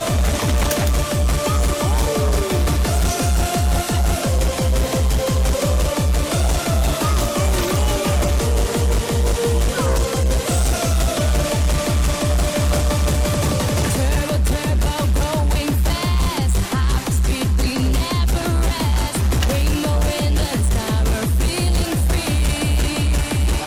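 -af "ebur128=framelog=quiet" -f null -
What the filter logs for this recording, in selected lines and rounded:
Integrated loudness:
  I:         -19.1 LUFS
  Threshold: -29.1 LUFS
Loudness range:
  LRA:         0.5 LU
  Threshold: -39.1 LUFS
  LRA low:   -19.4 LUFS
  LRA high:  -18.8 LUFS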